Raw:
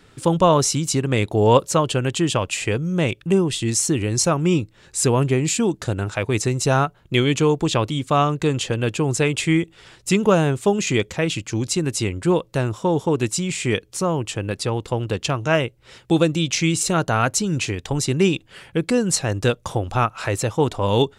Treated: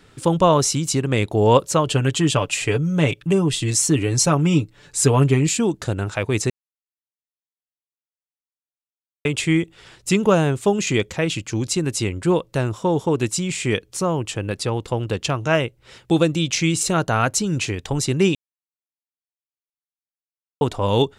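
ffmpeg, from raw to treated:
-filter_complex "[0:a]asettb=1/sr,asplit=3[s0][s1][s2];[s0]atrim=end=1.864[s3];[s1]atrim=start=1.86:end=5.47,asetpts=PTS-STARTPTS,afade=t=in:d=0.004:c=qsin,afade=t=out:st=3.606:d=0.004:c=qsin,aecho=1:1:6.9:0.65,atrim=end_sample=159201[s4];[s2]atrim=start=5.466[s5];[s3][s4]acrossfade=d=0.004:c1=hsin:c2=qsin[s6];[s6][s5]acrossfade=d=0.004:c1=qsin:c2=hsin,asplit=5[s7][s8][s9][s10][s11];[s7]atrim=end=6.5,asetpts=PTS-STARTPTS,afade=t=out:st=6.496:d=0.004:c=hsin[s12];[s8]atrim=start=6.5:end=9.25,asetpts=PTS-STARTPTS,volume=0[s13];[s9]atrim=start=9.25:end=18.35,asetpts=PTS-STARTPTS,afade=t=in:d=0.004:c=hsin,afade=t=out:st=9.096:d=0.004:c=hsin[s14];[s10]atrim=start=18.35:end=20.61,asetpts=PTS-STARTPTS,volume=0[s15];[s11]atrim=start=20.61,asetpts=PTS-STARTPTS,afade=t=in:d=0.004:c=hsin[s16];[s12][s13][s14][s15][s16]concat=n=5:v=0:a=1"

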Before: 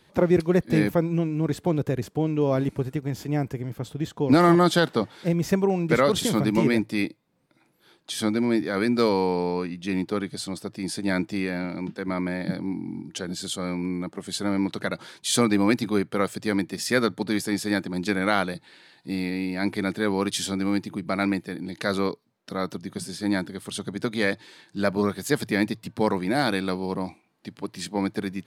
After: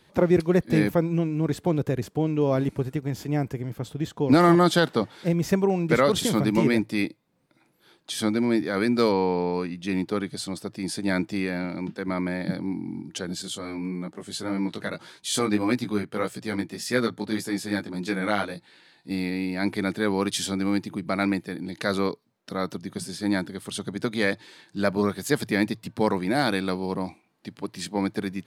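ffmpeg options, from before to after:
-filter_complex "[0:a]asplit=3[s0][s1][s2];[s0]afade=t=out:st=9.11:d=0.02[s3];[s1]lowpass=4000,afade=t=in:st=9.11:d=0.02,afade=t=out:st=9.52:d=0.02[s4];[s2]afade=t=in:st=9.52:d=0.02[s5];[s3][s4][s5]amix=inputs=3:normalize=0,asettb=1/sr,asplit=3[s6][s7][s8];[s6]atrim=end=13.424[s9];[s7]atrim=start=13.42:end=19.11,asetpts=PTS-STARTPTS,afade=t=in:d=0.004:c=qsin,afade=t=out:st=5.686:d=0.004:c=qsin,flanger=delay=16:depth=3.6:speed=1.7[s10];[s8]atrim=start=19.106[s11];[s9][s10]acrossfade=d=0.004:c1=hsin:c2=qsin[s12];[s12][s11]acrossfade=d=0.004:c1=qsin:c2=hsin"

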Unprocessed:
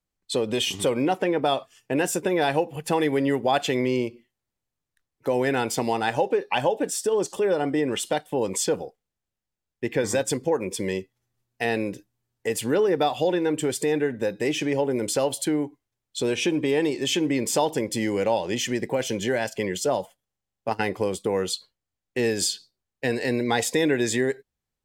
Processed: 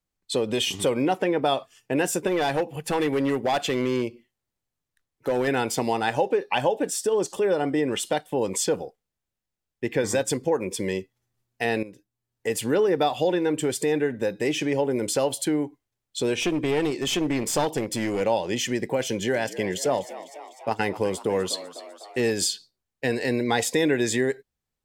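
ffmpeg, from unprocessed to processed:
-filter_complex "[0:a]asettb=1/sr,asplit=3[s0][s1][s2];[s0]atrim=end=2.274[s3];[s1]atrim=start=2.27:end=5.48,asetpts=PTS-STARTPTS,afade=t=in:d=0.004:c=qsin,afade=t=out:st=3.206:d=0.004:c=qsin,asoftclip=type=hard:threshold=0.119[s4];[s2]atrim=start=5.476[s5];[s3][s4]acrossfade=d=0.004:c1=hsin:c2=qsin[s6];[s6][s5]acrossfade=d=0.004:c1=qsin:c2=hsin,asettb=1/sr,asplit=3[s7][s8][s9];[s7]atrim=end=16.404[s10];[s8]atrim=start=16.4:end=18.21,asetpts=PTS-STARTPTS,afade=t=in:d=0.004:c=qsin,afade=t=out:st=1.806:d=0.004:c=qsin,aeval=exprs='clip(val(0),-1,0.0631)':c=same[s11];[s9]atrim=start=18.206[s12];[s10][s11]acrossfade=d=0.004:c1=hsin:c2=qsin[s13];[s13][s12]acrossfade=d=0.004:c1=qsin:c2=hsin,asettb=1/sr,asplit=3[s14][s15][s16];[s14]atrim=end=19.094[s17];[s15]atrim=start=19.09:end=22.32,asetpts=PTS-STARTPTS,afade=t=in:d=0.004:c=qsin,afade=t=out:st=3.226:d=0.004:c=qsin,asplit=8[s18][s19][s20][s21][s22][s23][s24][s25];[s19]adelay=250,afreqshift=75,volume=0.168[s26];[s20]adelay=500,afreqshift=150,volume=0.11[s27];[s21]adelay=750,afreqshift=225,volume=0.0708[s28];[s22]adelay=1000,afreqshift=300,volume=0.0462[s29];[s23]adelay=1250,afreqshift=375,volume=0.0299[s30];[s24]adelay=1500,afreqshift=450,volume=0.0195[s31];[s25]adelay=1750,afreqshift=525,volume=0.0126[s32];[s18][s26][s27][s28][s29][s30][s31][s32]amix=inputs=8:normalize=0,atrim=end_sample=142443[s33];[s16]atrim=start=22.316[s34];[s17][s33]acrossfade=d=0.004:c1=hsin:c2=qsin[s35];[s35][s34]acrossfade=d=0.004:c1=qsin:c2=hsin,asplit=2[s36][s37];[s36]atrim=end=11.83,asetpts=PTS-STARTPTS,afade=t=out:st=11.826:d=0.004:c=hsin:silence=0.223872[s38];[s37]atrim=start=11.83,asetpts=PTS-STARTPTS,afade=t=in:d=0.66:c=qua:silence=0.223872[s39];[s38][s39]concat=n=2:v=0:a=1"

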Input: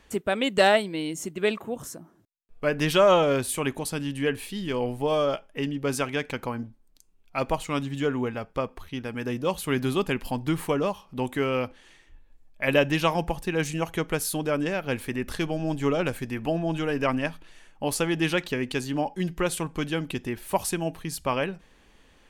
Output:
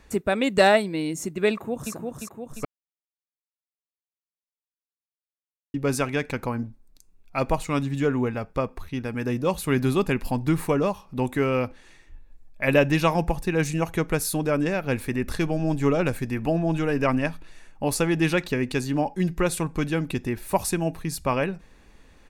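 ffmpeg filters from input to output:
-filter_complex "[0:a]asplit=2[s0][s1];[s1]afade=t=in:st=1.51:d=0.01,afade=t=out:st=1.93:d=0.01,aecho=0:1:350|700|1050|1400|1750|2100|2450|2800|3150:0.668344|0.401006|0.240604|0.144362|0.0866174|0.0519704|0.0311823|0.0187094|0.0112256[s2];[s0][s2]amix=inputs=2:normalize=0,asplit=3[s3][s4][s5];[s3]atrim=end=2.65,asetpts=PTS-STARTPTS,afade=t=out:st=2.646:d=0.004:c=hsin[s6];[s4]atrim=start=2.65:end=5.74,asetpts=PTS-STARTPTS,volume=0[s7];[s5]atrim=start=5.74,asetpts=PTS-STARTPTS,afade=t=in:d=0.004:c=hsin[s8];[s6][s7][s8]concat=n=3:v=0:a=1,lowshelf=f=200:g=5.5,bandreject=f=3100:w=6.3,volume=1.19"

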